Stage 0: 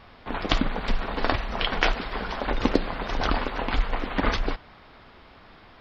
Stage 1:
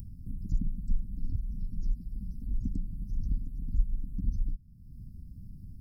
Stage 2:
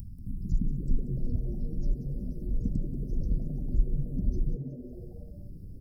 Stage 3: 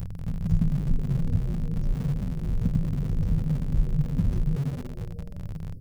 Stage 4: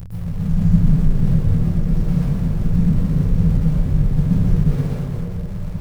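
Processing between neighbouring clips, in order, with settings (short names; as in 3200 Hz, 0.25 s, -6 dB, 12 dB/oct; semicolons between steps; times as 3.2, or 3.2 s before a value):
inverse Chebyshev band-stop 530–3500 Hz, stop band 60 dB; upward compressor, threshold -28 dBFS; gain -2 dB
dynamic EQ 180 Hz, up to +3 dB, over -46 dBFS, Q 1.2; frequency-shifting echo 0.185 s, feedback 50%, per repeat +110 Hz, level -12.5 dB; gain +1.5 dB
in parallel at -10.5 dB: Schmitt trigger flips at -39.5 dBFS; on the sum: thirty-one-band EQ 100 Hz +10 dB, 160 Hz +12 dB, 315 Hz -6 dB, 500 Hz +3 dB
plate-style reverb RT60 1.3 s, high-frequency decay 0.55×, pre-delay 0.105 s, DRR -8 dB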